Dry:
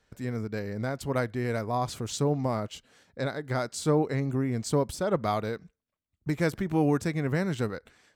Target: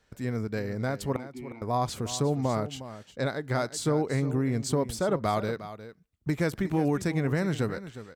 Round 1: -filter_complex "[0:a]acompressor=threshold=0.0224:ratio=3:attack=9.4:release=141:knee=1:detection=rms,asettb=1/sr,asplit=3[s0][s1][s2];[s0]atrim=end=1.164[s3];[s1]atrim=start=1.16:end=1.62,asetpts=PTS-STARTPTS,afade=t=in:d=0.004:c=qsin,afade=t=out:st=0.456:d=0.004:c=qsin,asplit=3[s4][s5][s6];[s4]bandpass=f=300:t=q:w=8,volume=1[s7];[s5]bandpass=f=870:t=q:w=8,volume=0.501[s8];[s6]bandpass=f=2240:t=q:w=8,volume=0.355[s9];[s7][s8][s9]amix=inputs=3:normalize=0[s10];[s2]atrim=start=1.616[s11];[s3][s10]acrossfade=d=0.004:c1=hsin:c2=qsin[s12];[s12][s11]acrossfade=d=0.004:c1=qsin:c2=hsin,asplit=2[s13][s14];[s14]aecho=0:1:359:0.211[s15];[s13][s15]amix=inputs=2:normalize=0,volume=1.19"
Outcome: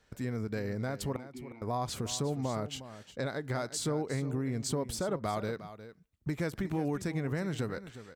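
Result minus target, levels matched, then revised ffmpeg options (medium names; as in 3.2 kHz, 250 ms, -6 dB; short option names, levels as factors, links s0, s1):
compression: peak gain reduction +6.5 dB
-filter_complex "[0:a]acompressor=threshold=0.0708:ratio=3:attack=9.4:release=141:knee=1:detection=rms,asettb=1/sr,asplit=3[s0][s1][s2];[s0]atrim=end=1.164[s3];[s1]atrim=start=1.16:end=1.62,asetpts=PTS-STARTPTS,afade=t=in:d=0.004:c=qsin,afade=t=out:st=0.456:d=0.004:c=qsin,asplit=3[s4][s5][s6];[s4]bandpass=f=300:t=q:w=8,volume=1[s7];[s5]bandpass=f=870:t=q:w=8,volume=0.501[s8];[s6]bandpass=f=2240:t=q:w=8,volume=0.355[s9];[s7][s8][s9]amix=inputs=3:normalize=0[s10];[s2]atrim=start=1.616[s11];[s3][s10]acrossfade=d=0.004:c1=hsin:c2=qsin[s12];[s12][s11]acrossfade=d=0.004:c1=qsin:c2=hsin,asplit=2[s13][s14];[s14]aecho=0:1:359:0.211[s15];[s13][s15]amix=inputs=2:normalize=0,volume=1.19"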